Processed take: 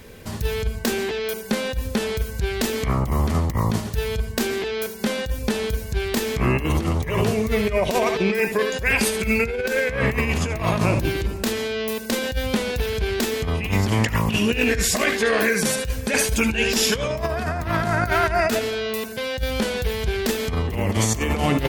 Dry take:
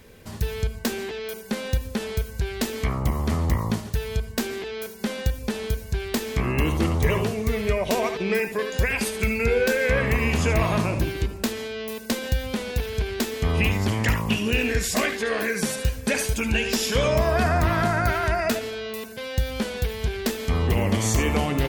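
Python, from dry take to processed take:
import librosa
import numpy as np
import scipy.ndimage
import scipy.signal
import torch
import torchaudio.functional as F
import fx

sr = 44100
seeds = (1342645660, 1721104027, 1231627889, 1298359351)

y = fx.over_compress(x, sr, threshold_db=-24.0, ratio=-0.5)
y = y * 10.0 ** (4.0 / 20.0)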